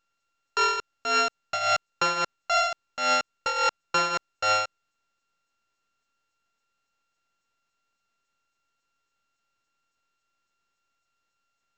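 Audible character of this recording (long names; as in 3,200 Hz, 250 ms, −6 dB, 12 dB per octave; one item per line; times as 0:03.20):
a buzz of ramps at a fixed pitch in blocks of 32 samples
tremolo triangle 3.6 Hz, depth 70%
mu-law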